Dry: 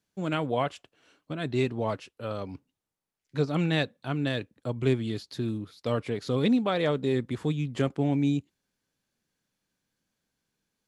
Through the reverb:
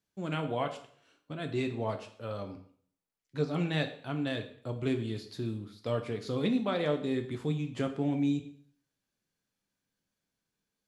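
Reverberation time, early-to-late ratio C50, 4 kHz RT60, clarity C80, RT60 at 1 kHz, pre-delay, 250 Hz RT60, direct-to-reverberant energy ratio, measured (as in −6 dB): 0.55 s, 11.5 dB, 0.50 s, 14.5 dB, 0.55 s, 5 ms, 0.55 s, 5.5 dB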